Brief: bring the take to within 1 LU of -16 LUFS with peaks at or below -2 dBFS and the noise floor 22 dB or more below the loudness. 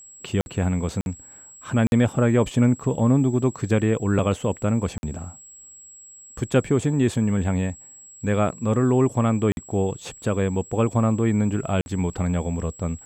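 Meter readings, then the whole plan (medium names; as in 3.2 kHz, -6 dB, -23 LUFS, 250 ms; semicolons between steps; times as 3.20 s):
dropouts 6; longest dropout 51 ms; steady tone 7.7 kHz; tone level -43 dBFS; loudness -23.0 LUFS; peak level -8.0 dBFS; loudness target -16.0 LUFS
-> interpolate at 0.41/1.01/1.87/4.98/9.52/11.81 s, 51 ms; band-stop 7.7 kHz, Q 30; trim +7 dB; peak limiter -2 dBFS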